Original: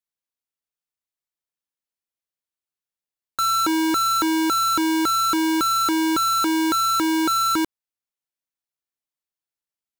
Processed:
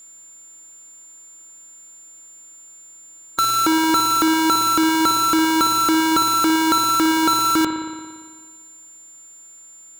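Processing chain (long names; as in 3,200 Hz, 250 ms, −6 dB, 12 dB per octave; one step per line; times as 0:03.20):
compressor on every frequency bin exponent 0.6
spring reverb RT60 1.6 s, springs 57 ms, chirp 40 ms, DRR 5.5 dB
steady tone 7,200 Hz −45 dBFS
level +3.5 dB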